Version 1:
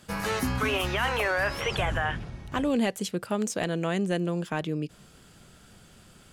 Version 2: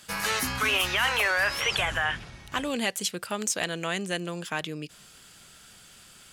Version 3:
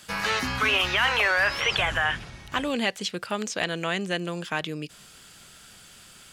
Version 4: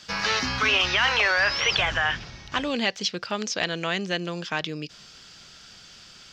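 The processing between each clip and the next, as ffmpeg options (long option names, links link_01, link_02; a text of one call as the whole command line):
ffmpeg -i in.wav -af "tiltshelf=frequency=970:gain=-7.5" out.wav
ffmpeg -i in.wav -filter_complex "[0:a]acrossover=split=5500[link_01][link_02];[link_02]acompressor=threshold=-51dB:ratio=4:attack=1:release=60[link_03];[link_01][link_03]amix=inputs=2:normalize=0,volume=2.5dB" out.wav
ffmpeg -i in.wav -af "highshelf=frequency=7500:width_type=q:width=3:gain=-12.5" out.wav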